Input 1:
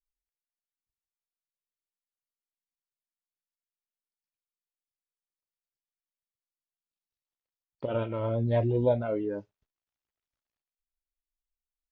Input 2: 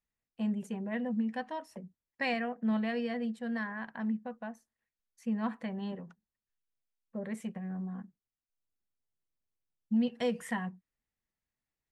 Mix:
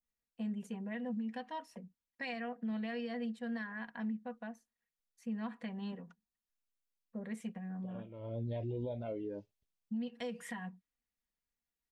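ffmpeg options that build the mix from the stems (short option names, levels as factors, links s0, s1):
-filter_complex "[0:a]equalizer=f=1400:w=1.3:g=-12,volume=0.501[s0];[1:a]aecho=1:1:4.2:0.42,volume=0.531,asplit=2[s1][s2];[s2]apad=whole_len=525609[s3];[s0][s3]sidechaincompress=threshold=0.00126:ratio=4:attack=16:release=489[s4];[s4][s1]amix=inputs=2:normalize=0,adynamicequalizer=threshold=0.00158:dfrequency=3200:dqfactor=0.73:tfrequency=3200:tqfactor=0.73:attack=5:release=100:ratio=0.375:range=2.5:mode=boostabove:tftype=bell,alimiter=level_in=2.51:limit=0.0631:level=0:latency=1:release=175,volume=0.398"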